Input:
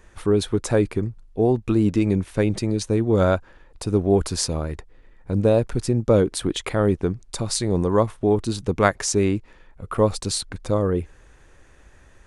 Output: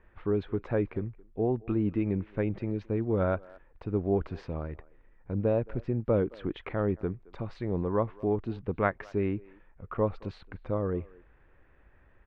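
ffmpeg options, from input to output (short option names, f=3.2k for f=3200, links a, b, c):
-filter_complex "[0:a]lowpass=f=2.5k:w=0.5412,lowpass=f=2.5k:w=1.3066,asplit=2[a][b];[b]adelay=220,highpass=300,lowpass=3.4k,asoftclip=type=hard:threshold=-9.5dB,volume=-22dB[c];[a][c]amix=inputs=2:normalize=0,volume=-9dB"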